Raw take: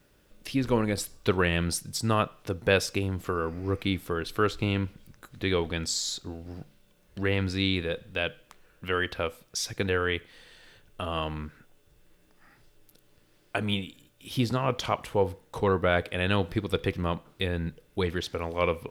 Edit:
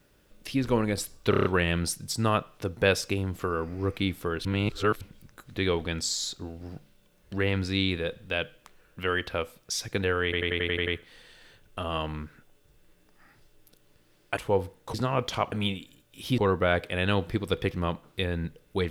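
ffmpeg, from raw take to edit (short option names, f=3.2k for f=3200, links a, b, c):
-filter_complex "[0:a]asplit=19[a][b][c][d][e][f][g][h][i][j][k][l][m][n][o][p][q][r][s];[a]atrim=end=1.332[t];[b]atrim=start=1.298:end=1.332[u];[c]atrim=start=1.298:end=1.332[v];[d]atrim=start=1.298:end=1.332[w];[e]atrim=start=1.298:end=1.332[x];[f]atrim=start=1.298:end=4.302[y];[g]atrim=start=4.298:end=4.862,asetpts=PTS-STARTPTS,areverse[z];[h]atrim=start=4.858:end=10.182[aa];[i]atrim=start=10.088:end=10.182[ab];[j]atrim=start=10.088:end=10.182[ac];[k]atrim=start=10.088:end=10.182[ad];[l]atrim=start=10.088:end=10.182[ae];[m]atrim=start=10.088:end=10.182[af];[n]atrim=start=10.088:end=10.182[ag];[o]atrim=start=10.088:end=13.592[ah];[p]atrim=start=15.028:end=15.602[ai];[q]atrim=start=14.448:end=15.032[aj];[r]atrim=start=13.588:end=14.452[ak];[s]atrim=start=15.598[al];[t][u]acrossfade=d=0.004:c1=hsin:c2=hsin[am];[am][v]acrossfade=d=0.004:c1=hsin:c2=hsin[an];[an][w]acrossfade=d=0.004:c1=hsin:c2=hsin[ao];[ao][x]acrossfade=d=0.004:c1=hsin:c2=hsin[ap];[ap][y]acrossfade=d=0.004:c1=hsin:c2=hsin[aq];[aq][z]acrossfade=d=0.004:c1=hsin:c2=hsin[ar];[ar][aa]acrossfade=d=0.004:c1=hsin:c2=hsin[as];[as][ab]acrossfade=d=0.004:c1=hsin:c2=hsin[at];[at][ac]acrossfade=d=0.004:c1=hsin:c2=hsin[au];[au][ad]acrossfade=d=0.004:c1=hsin:c2=hsin[av];[av][ae]acrossfade=d=0.004:c1=hsin:c2=hsin[aw];[aw][af]acrossfade=d=0.004:c1=hsin:c2=hsin[ax];[ax][ag]acrossfade=d=0.004:c1=hsin:c2=hsin[ay];[ay][ah]acrossfade=d=0.004:c1=hsin:c2=hsin[az];[az][ai]acrossfade=d=0.004:c1=hsin:c2=hsin[ba];[ba][aj]acrossfade=d=0.004:c1=hsin:c2=hsin[bb];[bb][ak]acrossfade=d=0.004:c1=hsin:c2=hsin[bc];[bc][al]acrossfade=d=0.004:c1=hsin:c2=hsin"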